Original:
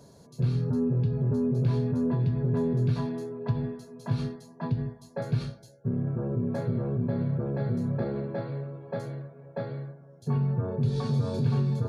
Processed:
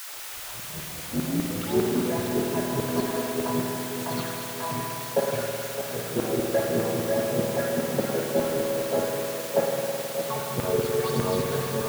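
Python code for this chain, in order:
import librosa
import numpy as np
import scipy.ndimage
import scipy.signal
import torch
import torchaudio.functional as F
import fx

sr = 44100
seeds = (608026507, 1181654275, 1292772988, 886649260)

p1 = fx.tape_start_head(x, sr, length_s=1.98)
p2 = fx.phaser_stages(p1, sr, stages=6, low_hz=240.0, high_hz=4100.0, hz=1.8, feedback_pct=45)
p3 = fx.quant_dither(p2, sr, seeds[0], bits=6, dither='triangular')
p4 = p2 + (p3 * 10.0 ** (-9.0 / 20.0))
p5 = fx.filter_lfo_highpass(p4, sr, shape='saw_down', hz=5.0, low_hz=290.0, high_hz=1500.0, q=1.1)
p6 = p5 + fx.echo_split(p5, sr, split_hz=1100.0, low_ms=613, high_ms=197, feedback_pct=52, wet_db=-8.5, dry=0)
p7 = fx.rev_spring(p6, sr, rt60_s=3.0, pass_ms=(52,), chirp_ms=30, drr_db=0.5)
y = p7 * 10.0 ** (6.5 / 20.0)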